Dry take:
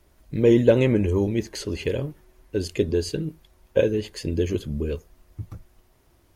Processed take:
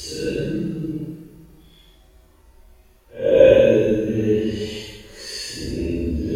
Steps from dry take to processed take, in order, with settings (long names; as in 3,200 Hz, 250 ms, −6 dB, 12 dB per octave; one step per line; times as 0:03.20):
extreme stretch with random phases 4.9×, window 0.10 s, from 0:03.09
coupled-rooms reverb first 0.72 s, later 2.4 s, DRR −5.5 dB
level −2 dB